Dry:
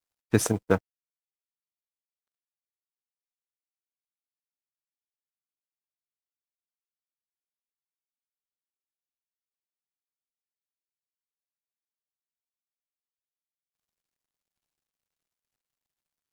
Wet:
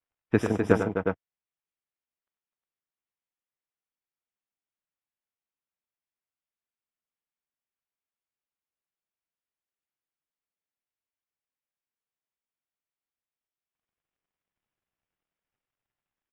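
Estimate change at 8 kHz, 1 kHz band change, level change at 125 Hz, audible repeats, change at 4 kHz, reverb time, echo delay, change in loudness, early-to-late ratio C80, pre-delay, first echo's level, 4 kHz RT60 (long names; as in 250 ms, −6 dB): −16.5 dB, +2.5 dB, −0.5 dB, 4, −7.0 dB, no reverb audible, 94 ms, 0.0 dB, no reverb audible, no reverb audible, −7.5 dB, no reverb audible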